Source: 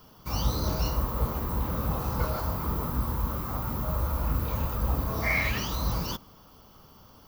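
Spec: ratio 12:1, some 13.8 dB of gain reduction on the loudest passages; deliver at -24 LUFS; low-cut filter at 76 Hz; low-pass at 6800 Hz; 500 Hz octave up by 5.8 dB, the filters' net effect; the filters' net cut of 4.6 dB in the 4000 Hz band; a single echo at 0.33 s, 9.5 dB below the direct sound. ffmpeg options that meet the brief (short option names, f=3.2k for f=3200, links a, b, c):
-af "highpass=76,lowpass=6.8k,equalizer=f=500:t=o:g=7,equalizer=f=4k:t=o:g=-5.5,acompressor=threshold=-37dB:ratio=12,aecho=1:1:330:0.335,volume=17.5dB"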